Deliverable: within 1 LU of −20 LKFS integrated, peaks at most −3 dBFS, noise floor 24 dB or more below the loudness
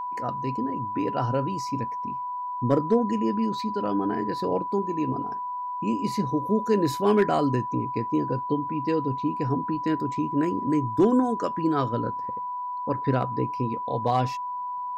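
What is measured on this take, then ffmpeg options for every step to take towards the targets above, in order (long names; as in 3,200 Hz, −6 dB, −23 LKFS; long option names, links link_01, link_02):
interfering tone 990 Hz; level of the tone −29 dBFS; integrated loudness −26.5 LKFS; sample peak −11.5 dBFS; target loudness −20.0 LKFS
→ -af "bandreject=frequency=990:width=30"
-af "volume=6.5dB"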